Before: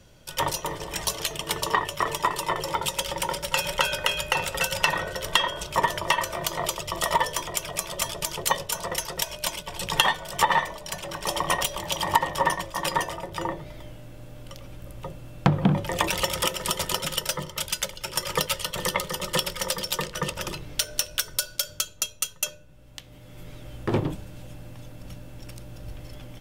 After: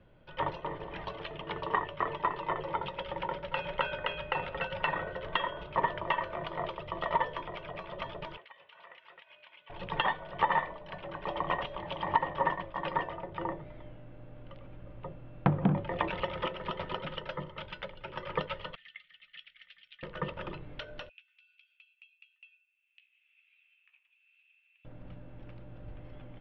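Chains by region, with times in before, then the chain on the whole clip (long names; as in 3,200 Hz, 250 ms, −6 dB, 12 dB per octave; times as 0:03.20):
0:08.37–0:09.70: resonant band-pass 2,500 Hz, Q 1.5 + downward compressor 12 to 1, threshold −39 dBFS
0:18.75–0:20.03: inverse Chebyshev high-pass filter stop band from 1,100 Hz + head-to-tape spacing loss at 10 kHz 23 dB + notch filter 5,000 Hz, Q 17
0:21.09–0:24.85: downward compressor 4 to 1, threshold −38 dBFS + four-pole ladder high-pass 2,500 Hz, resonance 90% + double-tracking delay 15 ms −10.5 dB
whole clip: Bessel low-pass filter 1,900 Hz, order 8; parametric band 63 Hz −4 dB 1.7 octaves; level −5 dB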